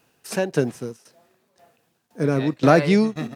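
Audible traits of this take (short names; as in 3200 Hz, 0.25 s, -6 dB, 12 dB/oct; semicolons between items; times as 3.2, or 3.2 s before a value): tremolo saw down 1.9 Hz, depth 80%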